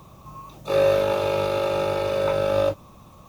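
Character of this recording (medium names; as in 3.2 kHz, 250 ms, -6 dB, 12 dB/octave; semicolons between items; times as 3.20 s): AAC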